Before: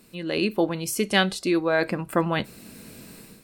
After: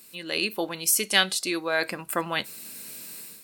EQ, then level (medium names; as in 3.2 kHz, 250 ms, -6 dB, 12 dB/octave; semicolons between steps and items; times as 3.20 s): tilt EQ +3.5 dB/octave; -2.5 dB